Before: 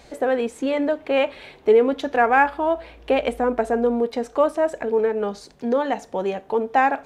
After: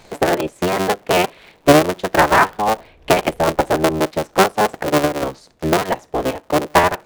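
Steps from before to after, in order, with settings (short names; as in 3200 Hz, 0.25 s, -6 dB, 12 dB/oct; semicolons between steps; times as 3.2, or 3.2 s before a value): cycle switcher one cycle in 3, inverted; transient shaper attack +4 dB, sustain -6 dB; gain +2.5 dB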